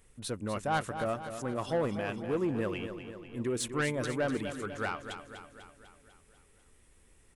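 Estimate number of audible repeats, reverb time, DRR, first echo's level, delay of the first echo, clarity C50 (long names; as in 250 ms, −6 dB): 6, no reverb audible, no reverb audible, −9.5 dB, 248 ms, no reverb audible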